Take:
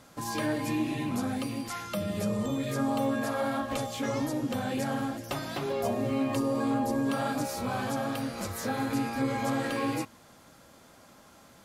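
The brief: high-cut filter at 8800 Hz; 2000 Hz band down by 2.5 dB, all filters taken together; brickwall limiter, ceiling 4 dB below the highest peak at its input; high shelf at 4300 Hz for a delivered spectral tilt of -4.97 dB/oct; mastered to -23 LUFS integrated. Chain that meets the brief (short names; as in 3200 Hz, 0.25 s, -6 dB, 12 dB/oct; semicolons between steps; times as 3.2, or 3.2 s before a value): LPF 8800 Hz; bell 2000 Hz -4.5 dB; high shelf 4300 Hz +6 dB; gain +9.5 dB; limiter -13.5 dBFS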